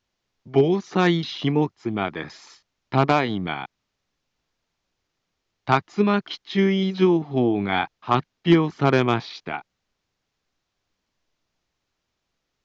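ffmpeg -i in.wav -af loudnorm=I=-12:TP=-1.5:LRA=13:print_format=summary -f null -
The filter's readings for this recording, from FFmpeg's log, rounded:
Input Integrated:    -22.2 LUFS
Input True Peak:      -6.8 dBTP
Input LRA:             6.3 LU
Input Threshold:     -32.9 LUFS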